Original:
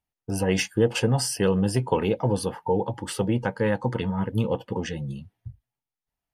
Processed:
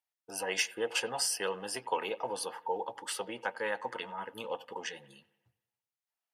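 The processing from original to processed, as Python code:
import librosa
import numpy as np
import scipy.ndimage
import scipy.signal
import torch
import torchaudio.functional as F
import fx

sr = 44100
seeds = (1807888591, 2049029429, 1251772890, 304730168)

p1 = scipy.signal.sosfilt(scipy.signal.butter(2, 740.0, 'highpass', fs=sr, output='sos'), x)
p2 = p1 + fx.echo_bbd(p1, sr, ms=93, stages=2048, feedback_pct=53, wet_db=-21.0, dry=0)
y = p2 * 10.0 ** (-3.0 / 20.0)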